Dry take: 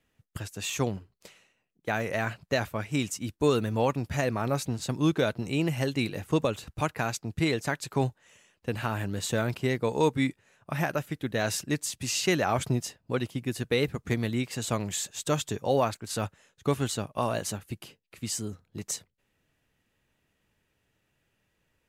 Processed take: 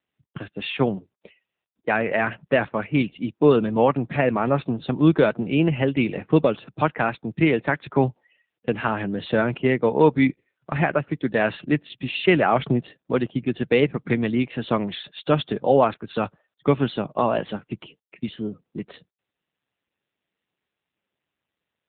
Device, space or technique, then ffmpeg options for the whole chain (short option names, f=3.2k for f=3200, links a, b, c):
mobile call with aggressive noise cancelling: -af "highpass=f=140:w=0.5412,highpass=f=140:w=1.3066,afftdn=nr=28:nf=-51,volume=8.5dB" -ar 8000 -c:a libopencore_amrnb -b:a 7950